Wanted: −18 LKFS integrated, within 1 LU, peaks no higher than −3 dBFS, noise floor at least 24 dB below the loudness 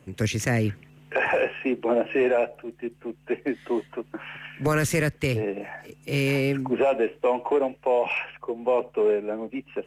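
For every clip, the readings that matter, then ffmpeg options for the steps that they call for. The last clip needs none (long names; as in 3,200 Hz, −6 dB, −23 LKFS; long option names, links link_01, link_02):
integrated loudness −25.5 LKFS; sample peak −12.5 dBFS; target loudness −18.0 LKFS
→ -af "volume=7.5dB"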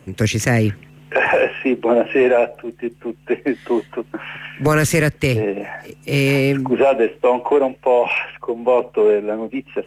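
integrated loudness −18.0 LKFS; sample peak −5.0 dBFS; background noise floor −48 dBFS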